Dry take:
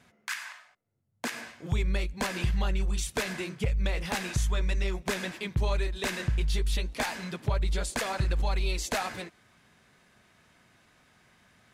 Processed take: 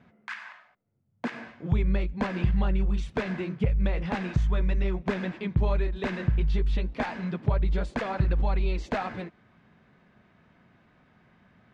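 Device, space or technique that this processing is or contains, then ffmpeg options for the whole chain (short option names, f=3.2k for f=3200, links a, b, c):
phone in a pocket: -af "lowpass=3.5k,equalizer=f=190:t=o:w=0.99:g=5,highshelf=f=2.1k:g=-10,volume=2.5dB"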